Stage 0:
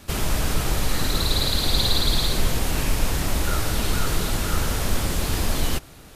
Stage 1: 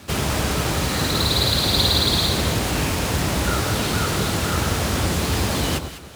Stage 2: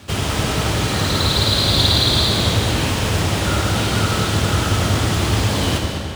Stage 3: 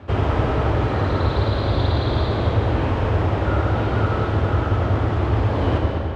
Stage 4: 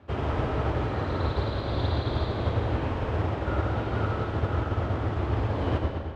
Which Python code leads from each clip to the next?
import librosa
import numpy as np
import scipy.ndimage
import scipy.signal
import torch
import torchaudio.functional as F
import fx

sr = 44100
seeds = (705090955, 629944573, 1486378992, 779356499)

y1 = scipy.signal.medfilt(x, 3)
y1 = scipy.signal.sosfilt(scipy.signal.butter(4, 66.0, 'highpass', fs=sr, output='sos'), y1)
y1 = fx.echo_alternate(y1, sr, ms=101, hz=1200.0, feedback_pct=52, wet_db=-7.0)
y1 = F.gain(torch.from_numpy(y1), 4.5).numpy()
y2 = fx.graphic_eq_31(y1, sr, hz=(100, 3150, 12500), db=(8, 4, -7))
y2 = fx.rev_freeverb(y2, sr, rt60_s=2.5, hf_ratio=0.85, predelay_ms=30, drr_db=2.0)
y3 = scipy.signal.sosfilt(scipy.signal.bessel(2, 990.0, 'lowpass', norm='mag', fs=sr, output='sos'), y2)
y3 = fx.peak_eq(y3, sr, hz=180.0, db=-10.0, octaves=0.79)
y3 = fx.rider(y3, sr, range_db=10, speed_s=0.5)
y3 = F.gain(torch.from_numpy(y3), 2.0).numpy()
y4 = fx.hum_notches(y3, sr, base_hz=50, count=2)
y4 = fx.upward_expand(y4, sr, threshold_db=-29.0, expansion=1.5)
y4 = F.gain(torch.from_numpy(y4), -5.5).numpy()